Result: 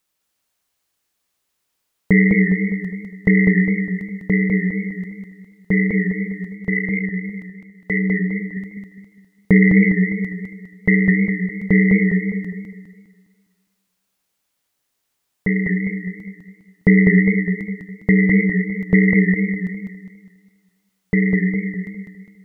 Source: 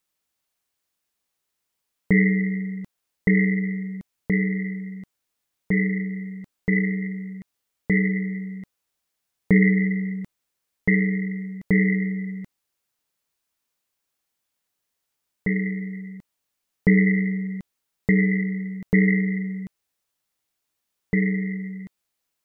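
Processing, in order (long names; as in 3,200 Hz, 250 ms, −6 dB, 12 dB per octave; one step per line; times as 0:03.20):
0:06.55–0:08.57: two-band tremolo in antiphase 1.9 Hz, depth 70%, crossover 440 Hz
feedback echo with a swinging delay time 204 ms, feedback 41%, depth 91 cents, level −3.5 dB
level +4.5 dB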